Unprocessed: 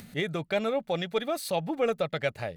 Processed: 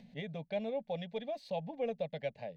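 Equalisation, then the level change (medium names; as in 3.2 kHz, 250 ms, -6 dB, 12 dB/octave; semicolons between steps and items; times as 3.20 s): distance through air 220 m; static phaser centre 350 Hz, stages 6; -6.5 dB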